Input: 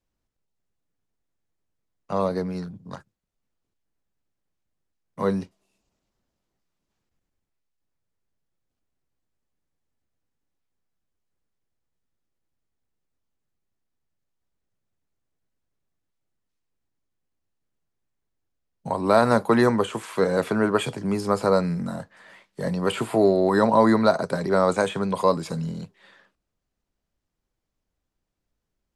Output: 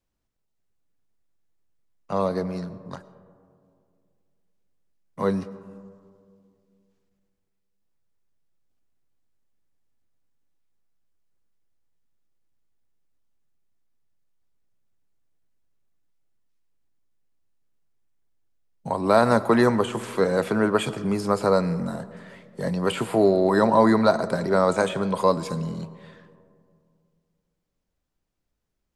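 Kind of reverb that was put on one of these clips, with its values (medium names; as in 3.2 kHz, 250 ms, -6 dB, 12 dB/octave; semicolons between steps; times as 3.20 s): algorithmic reverb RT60 2.3 s, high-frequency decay 0.3×, pre-delay 65 ms, DRR 16 dB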